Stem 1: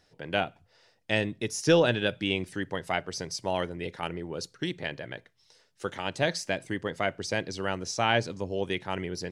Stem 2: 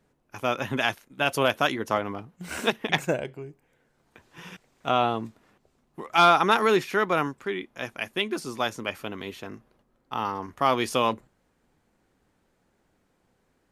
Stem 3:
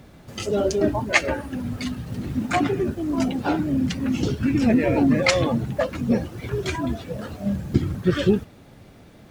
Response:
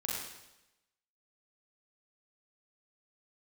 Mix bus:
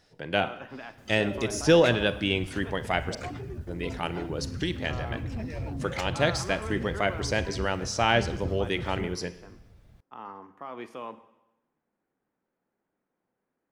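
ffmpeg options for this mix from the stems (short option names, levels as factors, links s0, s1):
-filter_complex "[0:a]deesser=0.65,volume=1.12,asplit=3[s0][s1][s2];[s0]atrim=end=3.15,asetpts=PTS-STARTPTS,afade=t=out:st=3.146:d=0.004:c=hsin[s3];[s1]atrim=start=3.15:end=3.67,asetpts=PTS-STARTPTS,volume=0[s4];[s2]atrim=start=3.67,asetpts=PTS-STARTPTS,afade=t=in:d=0.004:c=hsin[s5];[s3][s4][s5]concat=n=3:v=0:a=1,asplit=2[s6][s7];[s7]volume=0.178[s8];[1:a]acrossover=split=150 2400:gain=0.2 1 0.158[s9][s10][s11];[s9][s10][s11]amix=inputs=3:normalize=0,alimiter=limit=0.133:level=0:latency=1:release=69,volume=0.237,asplit=2[s12][s13];[s13]volume=0.2[s14];[2:a]asubboost=boost=11:cutoff=87,asoftclip=type=tanh:threshold=0.224,adelay=700,volume=0.188[s15];[3:a]atrim=start_sample=2205[s16];[s8][s14]amix=inputs=2:normalize=0[s17];[s17][s16]afir=irnorm=-1:irlink=0[s18];[s6][s12][s15][s18]amix=inputs=4:normalize=0"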